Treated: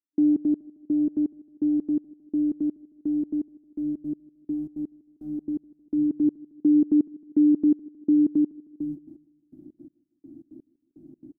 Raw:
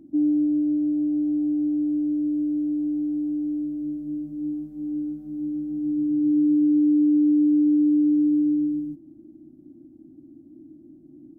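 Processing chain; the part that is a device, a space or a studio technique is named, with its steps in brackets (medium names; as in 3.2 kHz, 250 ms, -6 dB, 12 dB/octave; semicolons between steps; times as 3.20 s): trance gate with a delay (trance gate "..xx.x.." 167 bpm -60 dB; feedback delay 156 ms, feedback 51%, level -22 dB); trim +1.5 dB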